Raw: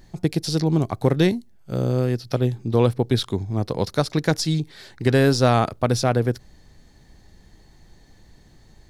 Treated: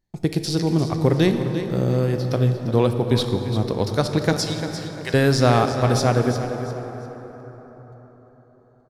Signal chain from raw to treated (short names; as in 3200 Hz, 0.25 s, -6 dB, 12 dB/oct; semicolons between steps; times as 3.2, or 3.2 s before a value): gate -42 dBFS, range -28 dB; 4.33–5.14 HPF 920 Hz; feedback echo 0.347 s, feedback 31%, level -11 dB; plate-style reverb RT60 4.7 s, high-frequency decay 0.45×, DRR 6.5 dB